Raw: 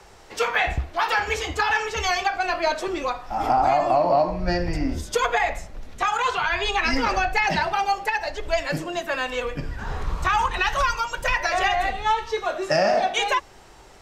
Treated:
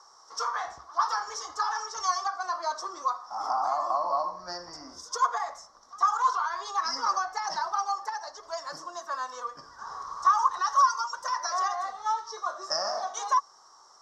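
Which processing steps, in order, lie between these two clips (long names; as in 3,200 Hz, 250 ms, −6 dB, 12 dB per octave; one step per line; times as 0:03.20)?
pair of resonant band-passes 2,500 Hz, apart 2.3 octaves
backwards echo 99 ms −23.5 dB
level +5 dB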